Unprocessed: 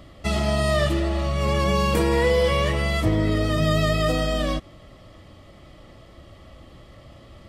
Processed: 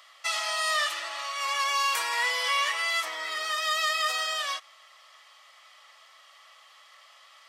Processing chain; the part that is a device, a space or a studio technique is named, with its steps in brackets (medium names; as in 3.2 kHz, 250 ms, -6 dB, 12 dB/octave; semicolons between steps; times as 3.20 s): 2.46–3.55 s: bass shelf 170 Hz +11 dB; headphones lying on a table (high-pass 1 kHz 24 dB/octave; peaking EQ 6 kHz +4.5 dB 0.47 oct); trim +1.5 dB